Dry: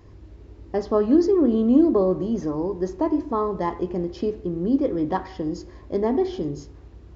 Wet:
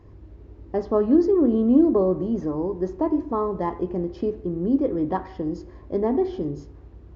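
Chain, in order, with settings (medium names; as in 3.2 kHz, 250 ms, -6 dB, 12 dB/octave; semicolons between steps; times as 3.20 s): treble shelf 2.7 kHz -12 dB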